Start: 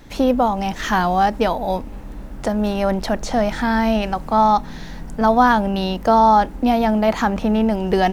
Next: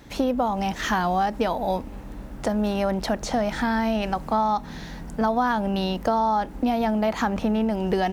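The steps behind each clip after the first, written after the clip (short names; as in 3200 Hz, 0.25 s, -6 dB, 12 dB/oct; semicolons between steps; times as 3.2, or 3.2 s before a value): HPF 41 Hz; compressor, threshold -17 dBFS, peak gain reduction 8 dB; gain -2 dB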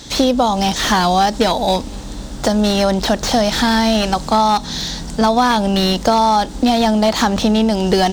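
band shelf 5400 Hz +15.5 dB; slew limiter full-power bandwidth 180 Hz; gain +8.5 dB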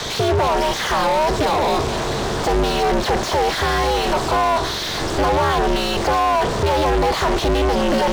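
overdrive pedal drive 40 dB, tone 1400 Hz, clips at -1 dBFS; ring modulator 160 Hz; gain -6 dB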